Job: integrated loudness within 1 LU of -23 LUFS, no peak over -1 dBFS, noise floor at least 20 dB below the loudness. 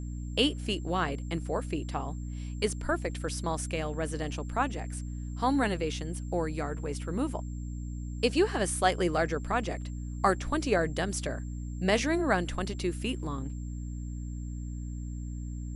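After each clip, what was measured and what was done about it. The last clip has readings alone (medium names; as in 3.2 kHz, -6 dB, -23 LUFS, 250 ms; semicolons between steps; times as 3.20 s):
hum 60 Hz; highest harmonic 300 Hz; hum level -34 dBFS; steady tone 7.4 kHz; tone level -57 dBFS; loudness -31.5 LUFS; peak level -11.0 dBFS; loudness target -23.0 LUFS
-> hum notches 60/120/180/240/300 Hz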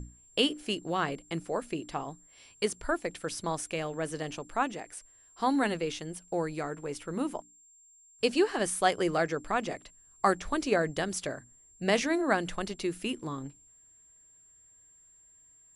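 hum not found; steady tone 7.4 kHz; tone level -57 dBFS
-> band-stop 7.4 kHz, Q 30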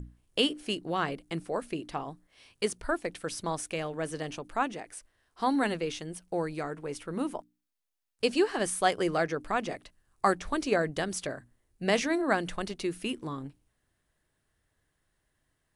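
steady tone not found; loudness -31.5 LUFS; peak level -11.0 dBFS; loudness target -23.0 LUFS
-> trim +8.5 dB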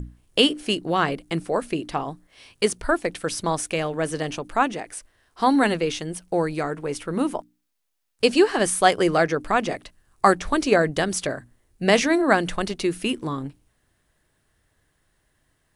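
loudness -23.0 LUFS; peak level -2.5 dBFS; noise floor -70 dBFS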